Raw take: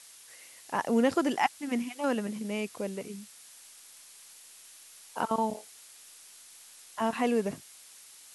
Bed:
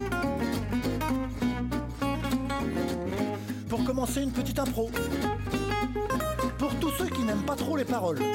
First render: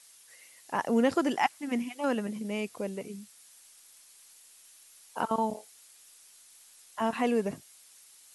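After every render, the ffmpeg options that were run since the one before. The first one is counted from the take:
-af "afftdn=nr=6:nf=-53"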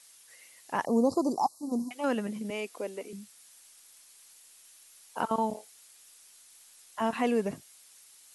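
-filter_complex "[0:a]asettb=1/sr,asplit=3[a][b][c];[a]atrim=end=0.854[d];[b]atrim=start=0.85:end=1.91,asetpts=PTS-STARTPTS,afade=t=in:d=0.004:c=qsin,afade=t=out:st=1.056:d=0.004:c=qsin,asuperstop=centerf=2200:order=20:qfactor=0.78[e];[c]atrim=start=1.906[f];[d][e]acrossfade=d=0.004:c1=hsin:c2=qsin[g];[g][f]acrossfade=d=0.004:c1=qsin:c2=hsin,asettb=1/sr,asplit=3[h][i][j];[h]atrim=end=2.504[k];[i]atrim=start=2.5:end=3.13,asetpts=PTS-STARTPTS,afade=t=in:d=0.004:c=qsin,afade=t=out:st=0.626:d=0.004:c=qsin,highpass=f=270:w=0.5412,highpass=f=270:w=1.3066[l];[j]atrim=start=3.126[m];[k][l]acrossfade=d=0.004:c1=hsin:c2=qsin[n];[n][m]acrossfade=d=0.004:c1=qsin:c2=hsin"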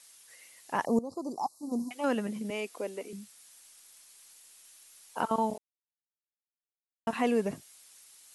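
-filter_complex "[0:a]asplit=4[a][b][c][d];[a]atrim=end=0.99,asetpts=PTS-STARTPTS,afade=t=out:st=0.986:d=0.004:c=hsin:silence=0.125893[e];[b]atrim=start=0.99:end=5.58,asetpts=PTS-STARTPTS,afade=t=in:d=0.94:silence=0.125893,afade=t=out:st=4.586:d=0.004:c=hsin[f];[c]atrim=start=5.58:end=7.07,asetpts=PTS-STARTPTS,volume=0[g];[d]atrim=start=7.07,asetpts=PTS-STARTPTS,afade=t=in:d=0.004:c=hsin[h];[e][f][g][h]concat=n=4:v=0:a=1"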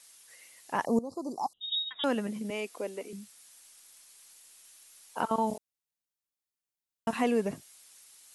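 -filter_complex "[0:a]asettb=1/sr,asplit=3[a][b][c];[a]atrim=end=1.534[d];[b]atrim=start=1.53:end=2.04,asetpts=PTS-STARTPTS,afade=t=in:d=0.004:c=qsin,afade=t=out:st=0.506:d=0.004:c=qsin,lowpass=f=3.4k:t=q:w=0.5098,lowpass=f=3.4k:t=q:w=0.6013,lowpass=f=3.4k:t=q:w=0.9,lowpass=f=3.4k:t=q:w=2.563,afreqshift=-4000[e];[c]atrim=start=2.036[f];[d][e]acrossfade=d=0.004:c1=hsin:c2=qsin[g];[g][f]acrossfade=d=0.004:c1=qsin:c2=hsin,asettb=1/sr,asplit=3[h][i][j];[h]atrim=end=5.474[k];[i]atrim=start=5.47:end=7.24,asetpts=PTS-STARTPTS,afade=t=in:d=0.004:c=qsin,afade=t=out:st=1.766:d=0.004:c=qsin,bass=f=250:g=3,treble=f=4k:g=4[l];[j]atrim=start=7.236[m];[k][l]acrossfade=d=0.004:c1=hsin:c2=qsin[n];[n][m]acrossfade=d=0.004:c1=qsin:c2=hsin"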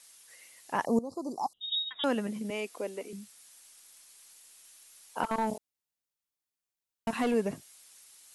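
-filter_complex "[0:a]asettb=1/sr,asplit=3[a][b][c];[a]atrim=end=5.234[d];[b]atrim=start=5.23:end=7.34,asetpts=PTS-STARTPTS,afade=t=in:d=0.004:c=qsin,afade=t=out:st=2.106:d=0.004:c=qsin,volume=23.5dB,asoftclip=hard,volume=-23.5dB[e];[c]atrim=start=7.336[f];[d][e]acrossfade=d=0.004:c1=hsin:c2=qsin[g];[g][f]acrossfade=d=0.004:c1=qsin:c2=hsin"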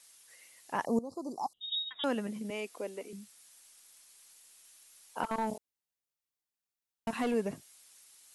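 -af "volume=-3dB"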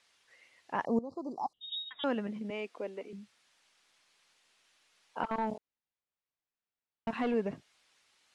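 -af "lowpass=3.3k"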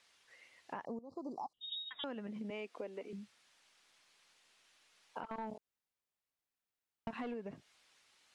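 -af "alimiter=level_in=1.5dB:limit=-24dB:level=0:latency=1:release=310,volume=-1.5dB,acompressor=threshold=-40dB:ratio=6"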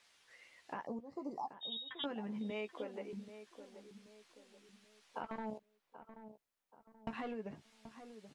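-filter_complex "[0:a]asplit=2[a][b];[b]adelay=14,volume=-7.5dB[c];[a][c]amix=inputs=2:normalize=0,asplit=2[d][e];[e]adelay=781,lowpass=f=1.3k:p=1,volume=-11dB,asplit=2[f][g];[g]adelay=781,lowpass=f=1.3k:p=1,volume=0.42,asplit=2[h][i];[i]adelay=781,lowpass=f=1.3k:p=1,volume=0.42,asplit=2[j][k];[k]adelay=781,lowpass=f=1.3k:p=1,volume=0.42[l];[d][f][h][j][l]amix=inputs=5:normalize=0"

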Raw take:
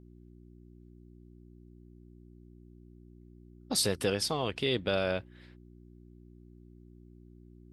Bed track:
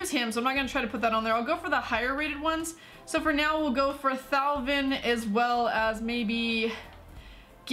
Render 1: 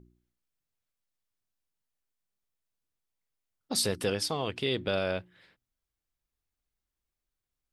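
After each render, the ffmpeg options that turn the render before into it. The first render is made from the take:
-af "bandreject=f=60:t=h:w=4,bandreject=f=120:t=h:w=4,bandreject=f=180:t=h:w=4,bandreject=f=240:t=h:w=4,bandreject=f=300:t=h:w=4,bandreject=f=360:t=h:w=4"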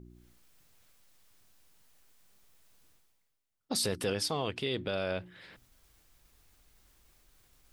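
-af "alimiter=limit=-20.5dB:level=0:latency=1:release=45,areverse,acompressor=mode=upward:threshold=-44dB:ratio=2.5,areverse"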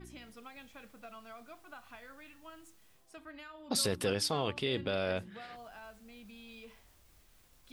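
-filter_complex "[1:a]volume=-24dB[a];[0:a][a]amix=inputs=2:normalize=0"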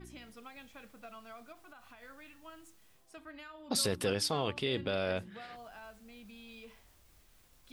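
-filter_complex "[0:a]asettb=1/sr,asplit=3[a][b][c];[a]atrim=end=1.524[d];[b]atrim=start=1.52:end=2.03,asetpts=PTS-STARTPTS,afade=t=in:d=0.004:c=qsin,afade=t=out:st=0.506:d=0.004:c=qsin,acompressor=threshold=-50dB:ratio=6:attack=3.2:release=140:knee=1:detection=peak[e];[c]atrim=start=2.026[f];[d][e]acrossfade=d=0.004:c1=hsin:c2=qsin[g];[g][f]acrossfade=d=0.004:c1=qsin:c2=hsin"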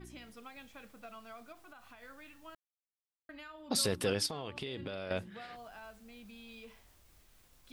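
-filter_complex "[0:a]asettb=1/sr,asplit=3[a][b][c];[a]atrim=end=4.264[d];[b]atrim=start=4.26:end=5.11,asetpts=PTS-STARTPTS,afade=t=in:d=0.004:c=qsin,afade=t=out:st=0.846:d=0.004:c=qsin,acompressor=threshold=-36dB:ratio=6:attack=3.2:release=140:knee=1:detection=peak[e];[c]atrim=start=5.106[f];[d][e]acrossfade=d=0.004:c1=hsin:c2=qsin[g];[g][f]acrossfade=d=0.004:c1=qsin:c2=hsin,asplit=3[h][i][j];[h]atrim=end=2.55,asetpts=PTS-STARTPTS,afade=t=out:st=2.546:d=0.004:c=hsin[k];[i]atrim=start=2.55:end=3.29,asetpts=PTS-STARTPTS,volume=0[l];[j]atrim=start=3.29,asetpts=PTS-STARTPTS,afade=t=in:d=0.004:c=hsin[m];[k][l][m]concat=n=3:v=0:a=1"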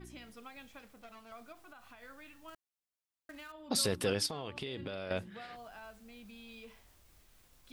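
-filter_complex "[0:a]asettb=1/sr,asplit=3[a][b][c];[a]atrim=end=0.794[d];[b]atrim=start=0.79:end=1.32,asetpts=PTS-STARTPTS,afade=t=in:d=0.004:c=qsin,afade=t=out:st=0.526:d=0.004:c=qsin,aeval=exprs='clip(val(0),-1,0.00133)':c=same[e];[c]atrim=start=1.316[f];[d][e]acrossfade=d=0.004:c1=hsin:c2=qsin[g];[g][f]acrossfade=d=0.004:c1=qsin:c2=hsin,asettb=1/sr,asplit=3[h][i][j];[h]atrim=end=2.484[k];[i]atrim=start=2.48:end=3.52,asetpts=PTS-STARTPTS,afade=t=in:d=0.004:c=qsin,afade=t=out:st=1.036:d=0.004:c=qsin,acrusher=bits=3:mode=log:mix=0:aa=0.000001[l];[j]atrim=start=3.516[m];[k][l]acrossfade=d=0.004:c1=hsin:c2=qsin[n];[n][m]acrossfade=d=0.004:c1=qsin:c2=hsin"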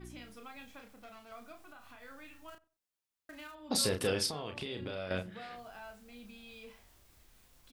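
-filter_complex "[0:a]asplit=2[a][b];[b]adelay=33,volume=-6dB[c];[a][c]amix=inputs=2:normalize=0,asplit=2[d][e];[e]adelay=93,lowpass=f=1k:p=1,volume=-19dB,asplit=2[f][g];[g]adelay=93,lowpass=f=1k:p=1,volume=0.25[h];[d][f][h]amix=inputs=3:normalize=0"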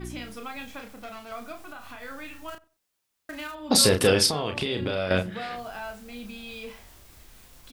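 -af "volume=12dB"

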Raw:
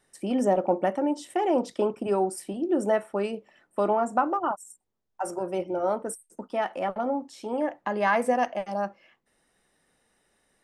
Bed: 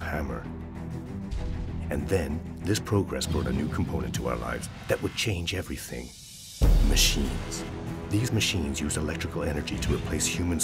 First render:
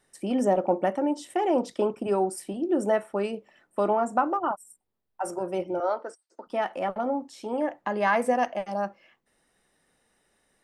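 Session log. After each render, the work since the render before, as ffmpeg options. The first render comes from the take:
-filter_complex "[0:a]asettb=1/sr,asplit=3[a][b][c];[a]atrim=end=4.374[d];[b]atrim=start=4.37:end=5.24,asetpts=PTS-STARTPTS,afade=t=in:d=0.004:c=qsin,afade=t=out:st=0.866:d=0.004:c=qsin,equalizer=f=6.6k:w=2.9:g=-13.5[e];[c]atrim=start=5.236[f];[d][e]acrossfade=d=0.004:c1=hsin:c2=qsin[g];[g][f]acrossfade=d=0.004:c1=qsin:c2=hsin,asettb=1/sr,asplit=3[h][i][j];[h]atrim=end=5.804[k];[i]atrim=start=5.8:end=6.47,asetpts=PTS-STARTPTS,afade=t=in:d=0.004:c=qsin,afade=t=out:st=0.666:d=0.004:c=qsin,highpass=f=350:w=0.5412,highpass=f=350:w=1.3066,equalizer=f=430:t=q:w=4:g=-5,equalizer=f=1.4k:t=q:w=4:g=4,equalizer=f=2.5k:t=q:w=4:g=-3,equalizer=f=4.6k:t=q:w=4:g=10,lowpass=f=5.4k:w=0.5412,lowpass=f=5.4k:w=1.3066[l];[j]atrim=start=6.466[m];[k][l]acrossfade=d=0.004:c1=hsin:c2=qsin[n];[n][m]acrossfade=d=0.004:c1=qsin:c2=hsin"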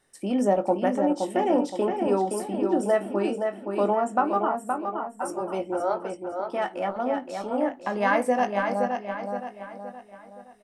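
-filter_complex "[0:a]asplit=2[a][b];[b]adelay=20,volume=-10.5dB[c];[a][c]amix=inputs=2:normalize=0,asplit=2[d][e];[e]adelay=520,lowpass=f=4.7k:p=1,volume=-5dB,asplit=2[f][g];[g]adelay=520,lowpass=f=4.7k:p=1,volume=0.44,asplit=2[h][i];[i]adelay=520,lowpass=f=4.7k:p=1,volume=0.44,asplit=2[j][k];[k]adelay=520,lowpass=f=4.7k:p=1,volume=0.44,asplit=2[l][m];[m]adelay=520,lowpass=f=4.7k:p=1,volume=0.44[n];[d][f][h][j][l][n]amix=inputs=6:normalize=0"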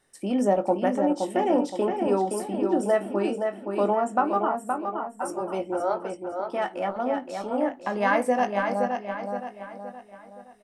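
-af anull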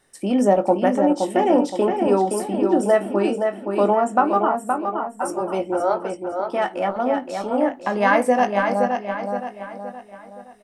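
-af "volume=5.5dB"

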